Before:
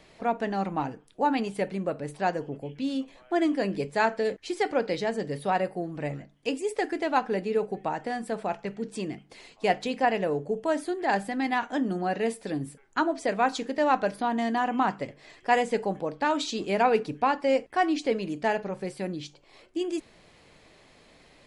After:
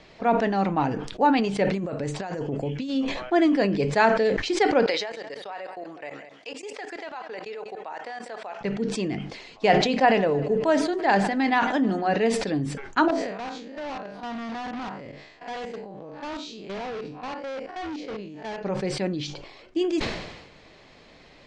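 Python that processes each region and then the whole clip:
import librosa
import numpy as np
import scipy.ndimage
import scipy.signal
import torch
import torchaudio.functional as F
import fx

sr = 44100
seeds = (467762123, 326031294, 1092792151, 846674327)

y = fx.chain(x, sr, fx.peak_eq(hz=7300.0, db=9.5, octaves=0.5),
    fx.over_compress(threshold_db=-35.0, ratio=-1.0), at=(1.73, 2.9))
y = fx.chain(y, sr, fx.highpass(hz=640.0, slope=12),
    fx.level_steps(step_db=20),
    fx.echo_single(ms=196, db=-18.0), at=(4.86, 8.61))
y = fx.chain(y, sr, fx.hum_notches(base_hz=60, count=7),
    fx.echo_feedback(ms=153, feedback_pct=52, wet_db=-21.0), at=(9.66, 12.14))
y = fx.chain(y, sr, fx.spec_blur(span_ms=108.0),
    fx.level_steps(step_db=15),
    fx.overload_stage(gain_db=36.0), at=(13.08, 18.61))
y = scipy.signal.sosfilt(scipy.signal.butter(4, 6200.0, 'lowpass', fs=sr, output='sos'), y)
y = fx.sustainer(y, sr, db_per_s=53.0)
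y = y * librosa.db_to_amplitude(4.5)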